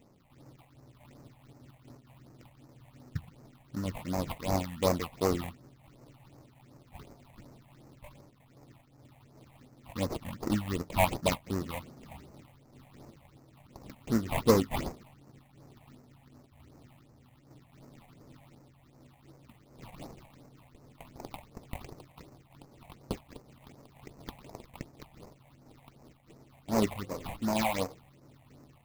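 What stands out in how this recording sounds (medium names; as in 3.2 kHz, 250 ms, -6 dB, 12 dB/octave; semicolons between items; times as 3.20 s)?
aliases and images of a low sample rate 1.6 kHz, jitter 20%; phasing stages 6, 2.7 Hz, lowest notch 350–3300 Hz; random flutter of the level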